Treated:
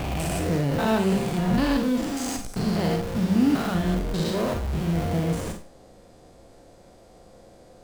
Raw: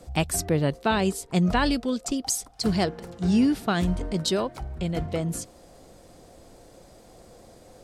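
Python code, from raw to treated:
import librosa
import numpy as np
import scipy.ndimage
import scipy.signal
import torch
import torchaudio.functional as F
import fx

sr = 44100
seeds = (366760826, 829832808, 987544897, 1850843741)

p1 = fx.spec_steps(x, sr, hold_ms=200)
p2 = fx.high_shelf(p1, sr, hz=6000.0, db=-7.0)
p3 = fx.schmitt(p2, sr, flips_db=-39.0)
p4 = p2 + (p3 * 10.0 ** (-3.0 / 20.0))
y = fx.rev_schroeder(p4, sr, rt60_s=0.31, comb_ms=32, drr_db=4.5)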